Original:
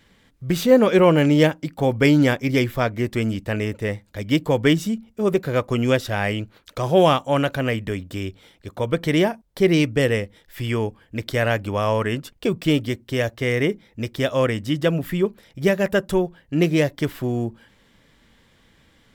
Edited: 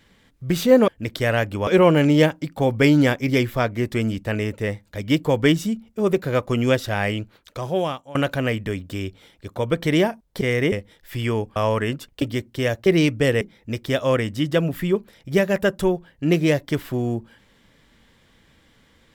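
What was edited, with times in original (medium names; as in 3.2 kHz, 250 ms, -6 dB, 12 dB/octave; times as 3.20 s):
6.37–7.36 s: fade out, to -21.5 dB
9.62–10.17 s: swap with 13.40–13.71 s
11.01–11.80 s: move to 0.88 s
12.46–12.76 s: delete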